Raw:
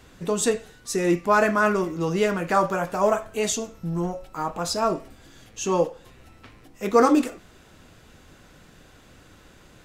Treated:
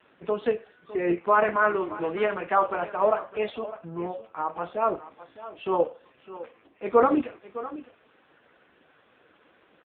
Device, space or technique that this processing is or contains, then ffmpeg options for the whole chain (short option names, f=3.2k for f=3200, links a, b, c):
satellite phone: -filter_complex "[0:a]asettb=1/sr,asplit=3[a][b][c];[a]atrim=end=1.624[d];[b]atrim=start=1.62:end=2.7,asetpts=PTS-STARTPTS,afade=t=in:d=0.004:c=qsin,afade=t=out:st=1.076:d=0.004:c=qsin,bass=f=250:g=-3,treble=f=4k:g=9[e];[c]atrim=start=2.696[f];[d][e]acrossfade=d=0.004:c1=hsin:c2=qsin[g];[g][f]acrossfade=d=0.004:c1=qsin:c2=hsin,highpass=340,lowpass=3.4k,aecho=1:1:608:0.168" -ar 8000 -c:a libopencore_amrnb -b:a 5150